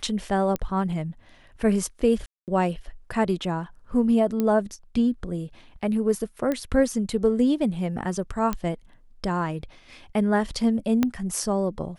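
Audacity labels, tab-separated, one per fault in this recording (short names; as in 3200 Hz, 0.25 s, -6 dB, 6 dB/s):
0.560000	0.560000	pop -14 dBFS
2.260000	2.480000	gap 0.218 s
4.400000	4.400000	pop -13 dBFS
6.520000	6.520000	pop -14 dBFS
8.530000	8.530000	pop -13 dBFS
11.030000	11.030000	pop -9 dBFS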